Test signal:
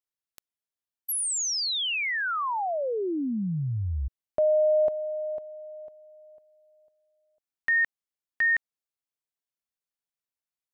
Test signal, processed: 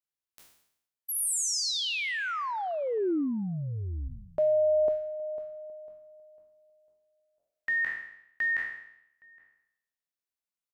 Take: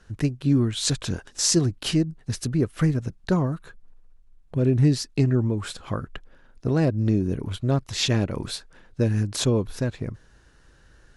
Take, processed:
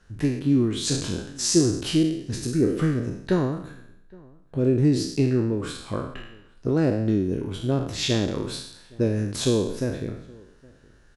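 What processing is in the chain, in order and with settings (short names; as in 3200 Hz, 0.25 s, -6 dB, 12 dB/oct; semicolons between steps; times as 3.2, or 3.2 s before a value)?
spectral trails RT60 0.76 s; dynamic EQ 340 Hz, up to +7 dB, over -34 dBFS, Q 1; outdoor echo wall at 140 m, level -25 dB; gain -5 dB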